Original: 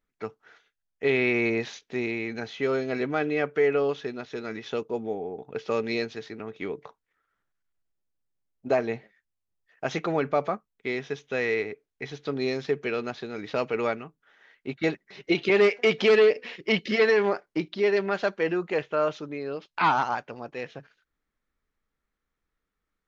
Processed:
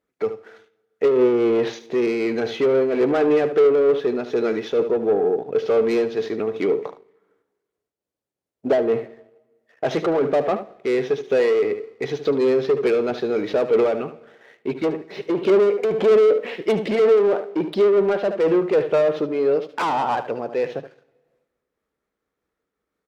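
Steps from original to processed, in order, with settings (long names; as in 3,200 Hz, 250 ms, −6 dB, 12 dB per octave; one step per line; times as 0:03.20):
treble cut that deepens with the level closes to 1,000 Hz, closed at −19 dBFS
soft clipping −27 dBFS, distortion −7 dB
high-pass filter 71 Hz
single-tap delay 74 ms −12 dB
on a send at −22 dB: convolution reverb RT60 1.4 s, pre-delay 86 ms
on the sum: leveller curve on the samples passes 1
parametric band 470 Hz +11 dB 1.7 octaves
amplitude modulation by smooth noise, depth 60%
level +5 dB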